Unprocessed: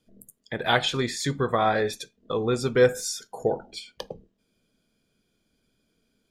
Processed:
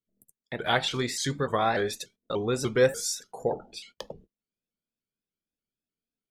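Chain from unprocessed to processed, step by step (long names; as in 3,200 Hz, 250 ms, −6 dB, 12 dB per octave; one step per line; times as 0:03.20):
0:00.91–0:03.15: high-shelf EQ 3,500 Hz +4.5 dB
noise gate −48 dBFS, range −21 dB
pitch modulation by a square or saw wave saw up 3.4 Hz, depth 160 cents
level −3 dB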